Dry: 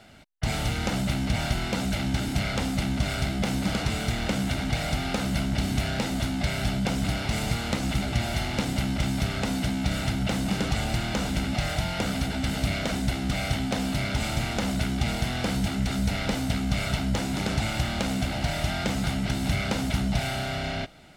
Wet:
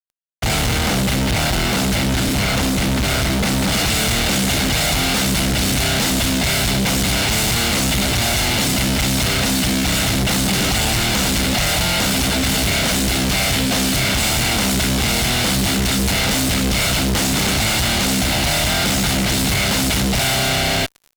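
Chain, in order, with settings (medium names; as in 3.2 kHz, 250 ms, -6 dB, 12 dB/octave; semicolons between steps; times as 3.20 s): treble shelf 2.3 kHz +3.5 dB, from 3.72 s +10.5 dB; fuzz box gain 40 dB, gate -40 dBFS; trim -3 dB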